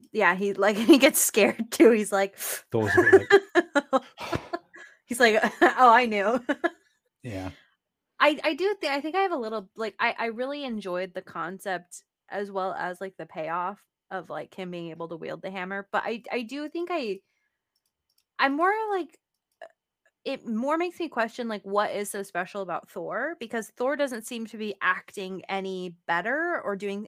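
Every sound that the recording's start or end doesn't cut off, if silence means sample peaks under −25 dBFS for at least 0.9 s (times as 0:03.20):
0:18.39–0:19.01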